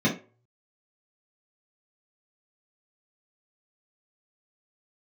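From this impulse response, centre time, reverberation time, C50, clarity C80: 24 ms, 0.35 s, 9.0 dB, 15.5 dB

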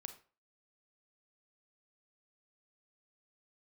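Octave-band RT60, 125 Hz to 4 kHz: 0.40, 0.35, 0.40, 0.40, 0.35, 0.30 seconds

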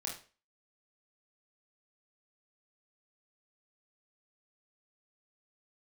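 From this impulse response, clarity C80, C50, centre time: 12.5 dB, 6.0 dB, 29 ms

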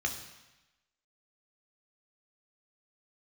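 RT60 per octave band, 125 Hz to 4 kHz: 1.0, 1.0, 0.95, 1.1, 1.1, 1.1 seconds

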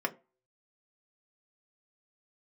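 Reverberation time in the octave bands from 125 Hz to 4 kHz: 0.25, 0.30, 0.35, 0.30, 0.25, 0.15 seconds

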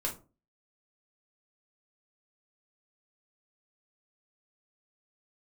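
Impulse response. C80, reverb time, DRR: 19.0 dB, 0.35 s, −0.5 dB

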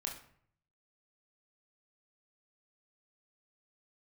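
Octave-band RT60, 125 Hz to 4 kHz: 0.95, 0.70, 0.60, 0.60, 0.55, 0.40 seconds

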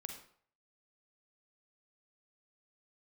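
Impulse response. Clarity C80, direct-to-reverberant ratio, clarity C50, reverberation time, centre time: 9.5 dB, 4.0 dB, 5.5 dB, 0.55 s, 23 ms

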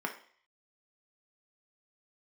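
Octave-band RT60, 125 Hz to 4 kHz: 0.40, 0.45, 0.50, 0.55, 0.60, 0.55 seconds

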